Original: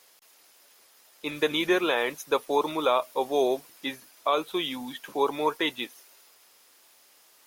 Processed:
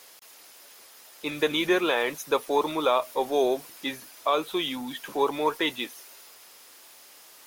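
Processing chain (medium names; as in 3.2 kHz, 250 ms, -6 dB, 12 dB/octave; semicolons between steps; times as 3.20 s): companding laws mixed up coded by mu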